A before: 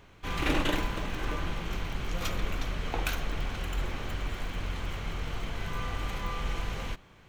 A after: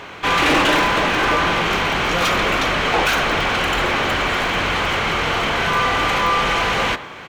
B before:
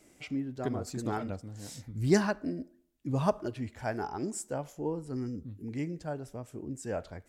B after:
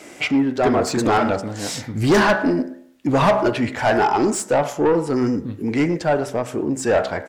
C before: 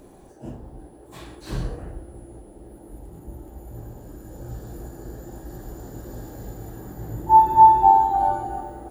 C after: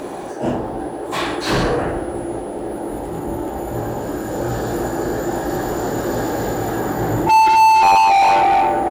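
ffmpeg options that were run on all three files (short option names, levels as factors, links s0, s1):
-filter_complex "[0:a]bandreject=f=64.92:t=h:w=4,bandreject=f=129.84:t=h:w=4,bandreject=f=194.76:t=h:w=4,bandreject=f=259.68:t=h:w=4,bandreject=f=324.6:t=h:w=4,bandreject=f=389.52:t=h:w=4,bandreject=f=454.44:t=h:w=4,bandreject=f=519.36:t=h:w=4,bandreject=f=584.28:t=h:w=4,bandreject=f=649.2:t=h:w=4,bandreject=f=714.12:t=h:w=4,bandreject=f=779.04:t=h:w=4,bandreject=f=843.96:t=h:w=4,bandreject=f=908.88:t=h:w=4,bandreject=f=973.8:t=h:w=4,bandreject=f=1038.72:t=h:w=4,bandreject=f=1103.64:t=h:w=4,bandreject=f=1168.56:t=h:w=4,bandreject=f=1233.48:t=h:w=4,bandreject=f=1298.4:t=h:w=4,bandreject=f=1363.32:t=h:w=4,bandreject=f=1428.24:t=h:w=4,bandreject=f=1493.16:t=h:w=4,bandreject=f=1558.08:t=h:w=4,bandreject=f=1623:t=h:w=4,bandreject=f=1687.92:t=h:w=4,bandreject=f=1752.84:t=h:w=4,bandreject=f=1817.76:t=h:w=4,bandreject=f=1882.68:t=h:w=4,bandreject=f=1947.6:t=h:w=4,bandreject=f=2012.52:t=h:w=4,bandreject=f=2077.44:t=h:w=4,asplit=2[s0][s1];[s1]highpass=f=720:p=1,volume=63.1,asoftclip=type=tanh:threshold=0.708[s2];[s0][s2]amix=inputs=2:normalize=0,lowpass=f=2400:p=1,volume=0.501,asplit=2[s3][s4];[s4]adelay=110,highpass=300,lowpass=3400,asoftclip=type=hard:threshold=0.224,volume=0.112[s5];[s3][s5]amix=inputs=2:normalize=0,volume=0.75"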